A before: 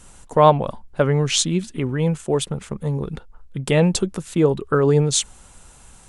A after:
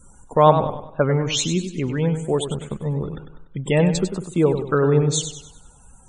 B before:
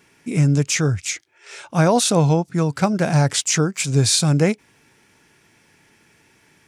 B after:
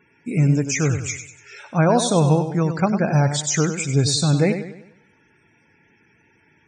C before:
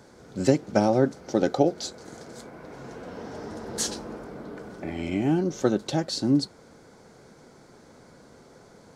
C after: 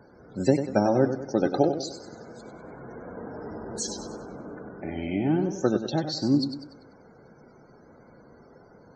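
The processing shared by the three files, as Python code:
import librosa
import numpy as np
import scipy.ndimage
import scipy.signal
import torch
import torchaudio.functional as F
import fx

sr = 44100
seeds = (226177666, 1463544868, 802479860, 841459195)

y = fx.spec_topn(x, sr, count=64)
y = fx.echo_warbled(y, sr, ms=97, feedback_pct=42, rate_hz=2.8, cents=83, wet_db=-9)
y = y * 10.0 ** (-1.0 / 20.0)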